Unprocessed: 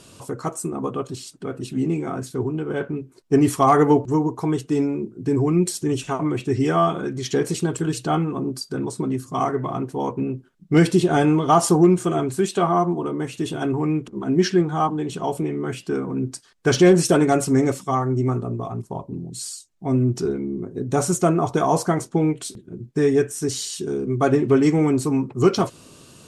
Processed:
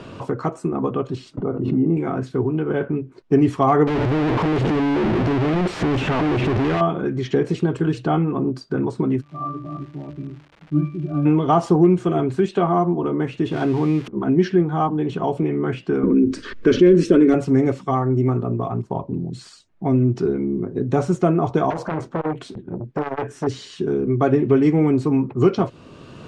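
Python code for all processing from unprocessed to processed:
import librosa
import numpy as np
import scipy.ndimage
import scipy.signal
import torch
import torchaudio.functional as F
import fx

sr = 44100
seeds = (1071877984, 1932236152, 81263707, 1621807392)

y = fx.chain(x, sr, fx.savgol(points=65),
    fx.doubler(ms=42.0, db=-12),
    fx.pre_swell(db_per_s=49.0), at=(1.37, 1.97))
y = fx.chain(y, sr, fx.clip_1bit(),
    fx.high_shelf(hz=7700.0, db=-7.5), at=(3.87, 6.81))
y = fx.peak_eq(y, sr, hz=210.0, db=3.0, octaves=2.5, at=(9.2, 11.25), fade=0.02)
y = fx.octave_resonator(y, sr, note='D', decay_s=0.36, at=(9.2, 11.25), fade=0.02)
y = fx.dmg_crackle(y, sr, seeds[0], per_s=240.0, level_db=-43.0, at=(9.2, 11.25), fade=0.02)
y = fx.chain(y, sr, fx.crossing_spikes(level_db=-19.0),
    fx.high_shelf(hz=8300.0, db=-6.0), at=(13.51, 14.08))
y = fx.chain(y, sr, fx.tilt_eq(slope=-1.5),
    fx.fixed_phaser(hz=320.0, stages=4),
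    fx.env_flatten(amount_pct=50), at=(16.03, 17.34))
y = fx.chain(y, sr, fx.clip_hard(threshold_db=-19.0),
    fx.transformer_sat(knee_hz=540.0), at=(21.7, 23.47))
y = scipy.signal.sosfilt(scipy.signal.butter(2, 2500.0, 'lowpass', fs=sr, output='sos'), y)
y = fx.dynamic_eq(y, sr, hz=1300.0, q=0.82, threshold_db=-31.0, ratio=4.0, max_db=-4)
y = fx.band_squash(y, sr, depth_pct=40)
y = y * 10.0 ** (2.5 / 20.0)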